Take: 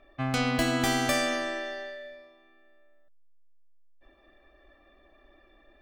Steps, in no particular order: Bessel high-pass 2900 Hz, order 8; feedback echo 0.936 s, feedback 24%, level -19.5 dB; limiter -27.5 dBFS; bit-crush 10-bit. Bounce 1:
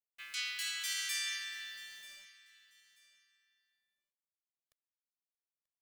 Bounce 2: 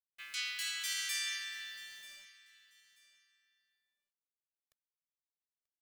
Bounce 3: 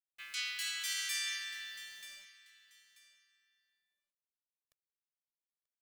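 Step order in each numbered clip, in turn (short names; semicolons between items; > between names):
Bessel high-pass > bit-crush > limiter > feedback echo; Bessel high-pass > limiter > bit-crush > feedback echo; Bessel high-pass > bit-crush > feedback echo > limiter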